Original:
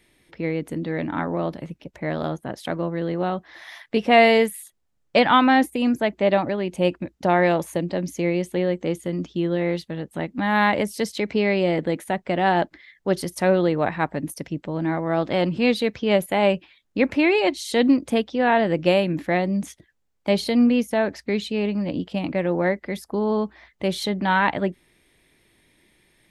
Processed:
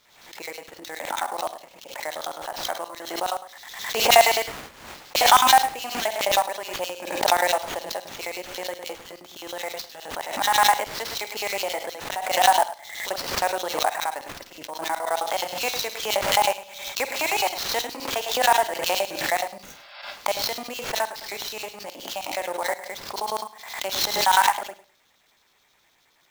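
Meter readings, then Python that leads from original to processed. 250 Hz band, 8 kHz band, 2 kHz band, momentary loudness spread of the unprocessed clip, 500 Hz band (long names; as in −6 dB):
−20.0 dB, +12.5 dB, −1.0 dB, 11 LU, −6.0 dB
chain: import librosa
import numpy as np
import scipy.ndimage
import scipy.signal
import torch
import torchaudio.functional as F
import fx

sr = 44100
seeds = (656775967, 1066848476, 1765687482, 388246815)

y = fx.high_shelf(x, sr, hz=7100.0, db=4.5)
y = fx.room_flutter(y, sr, wall_m=8.7, rt60_s=0.41)
y = fx.filter_lfo_highpass(y, sr, shape='square', hz=9.5, low_hz=820.0, high_hz=4000.0, q=2.7)
y = fx.sample_hold(y, sr, seeds[0], rate_hz=9800.0, jitter_pct=20)
y = fx.spec_repair(y, sr, seeds[1], start_s=19.67, length_s=0.32, low_hz=550.0, high_hz=5500.0, source='before')
y = fx.rev_schroeder(y, sr, rt60_s=0.38, comb_ms=32, drr_db=18.0)
y = fx.pre_swell(y, sr, db_per_s=64.0)
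y = F.gain(torch.from_numpy(y), -3.5).numpy()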